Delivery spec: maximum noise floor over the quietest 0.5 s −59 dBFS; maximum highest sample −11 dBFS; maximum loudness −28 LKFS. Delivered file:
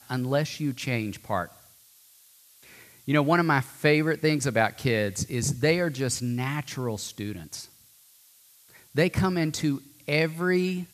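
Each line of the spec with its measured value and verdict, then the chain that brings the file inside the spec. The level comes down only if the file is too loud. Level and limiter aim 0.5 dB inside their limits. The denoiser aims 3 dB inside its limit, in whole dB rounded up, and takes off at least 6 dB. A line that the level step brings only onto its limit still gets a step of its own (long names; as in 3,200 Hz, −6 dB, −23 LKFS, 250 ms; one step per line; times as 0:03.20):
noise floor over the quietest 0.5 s −57 dBFS: out of spec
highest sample −7.0 dBFS: out of spec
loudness −26.5 LKFS: out of spec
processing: broadband denoise 6 dB, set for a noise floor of −57 dBFS
level −2 dB
brickwall limiter −11.5 dBFS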